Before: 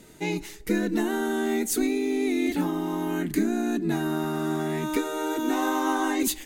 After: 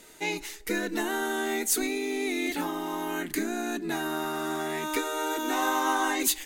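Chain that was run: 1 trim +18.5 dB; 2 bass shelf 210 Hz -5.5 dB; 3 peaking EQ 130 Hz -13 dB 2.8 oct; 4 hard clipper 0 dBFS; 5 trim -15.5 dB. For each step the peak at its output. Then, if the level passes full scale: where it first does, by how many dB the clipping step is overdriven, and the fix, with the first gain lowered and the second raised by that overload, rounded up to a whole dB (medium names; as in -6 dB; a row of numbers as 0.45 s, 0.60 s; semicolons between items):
+6.5 dBFS, +5.0 dBFS, +5.0 dBFS, 0.0 dBFS, -15.5 dBFS; step 1, 5.0 dB; step 1 +13.5 dB, step 5 -10.5 dB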